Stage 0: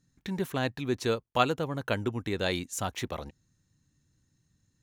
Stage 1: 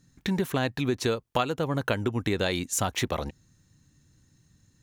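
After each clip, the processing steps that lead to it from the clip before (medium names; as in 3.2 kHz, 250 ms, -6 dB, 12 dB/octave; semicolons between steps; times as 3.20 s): compression 6:1, threshold -32 dBFS, peak gain reduction 13 dB; trim +9 dB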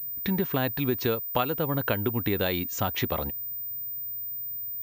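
distance through air 61 m; class-D stage that switches slowly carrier 15 kHz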